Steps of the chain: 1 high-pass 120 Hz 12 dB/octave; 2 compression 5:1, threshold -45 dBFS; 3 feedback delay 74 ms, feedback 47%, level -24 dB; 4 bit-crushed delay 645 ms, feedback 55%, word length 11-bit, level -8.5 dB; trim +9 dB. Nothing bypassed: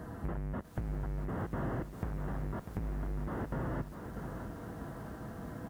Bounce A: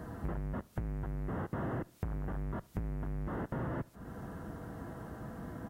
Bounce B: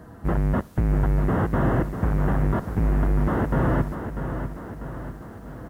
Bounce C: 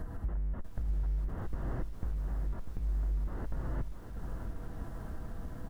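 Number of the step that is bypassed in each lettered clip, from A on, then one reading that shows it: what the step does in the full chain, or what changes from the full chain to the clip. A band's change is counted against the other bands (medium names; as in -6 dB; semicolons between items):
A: 4, crest factor change +1.5 dB; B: 2, mean gain reduction 9.5 dB; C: 1, 125 Hz band +6.5 dB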